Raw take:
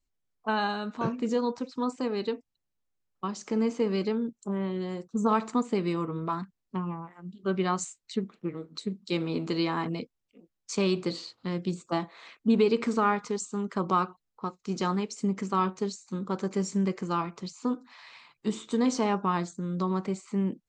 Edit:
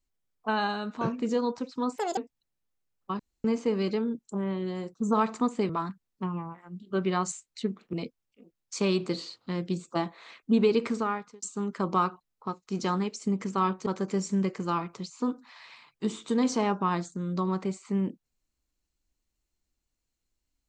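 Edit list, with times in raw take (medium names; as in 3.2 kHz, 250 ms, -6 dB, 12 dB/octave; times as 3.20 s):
1.98–2.31 s: speed 171%
3.33–3.58 s: room tone
5.83–6.22 s: delete
8.46–9.90 s: delete
12.79–13.39 s: fade out linear
15.83–16.29 s: delete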